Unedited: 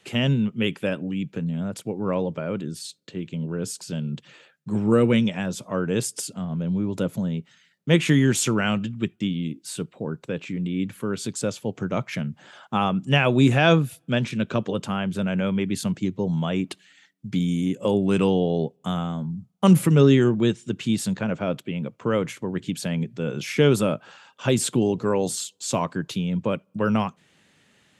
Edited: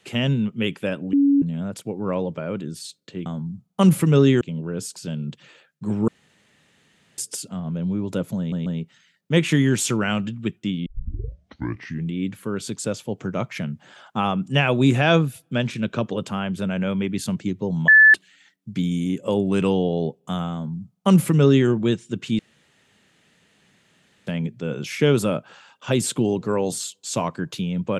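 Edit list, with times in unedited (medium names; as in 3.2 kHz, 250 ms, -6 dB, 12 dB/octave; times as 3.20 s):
1.13–1.42 s: bleep 281 Hz -13 dBFS
4.93–6.03 s: room tone
7.23 s: stutter 0.14 s, 3 plays
9.43 s: tape start 1.28 s
16.45–16.71 s: bleep 1.74 kHz -7.5 dBFS
19.10–20.25 s: copy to 3.26 s
20.96–22.84 s: room tone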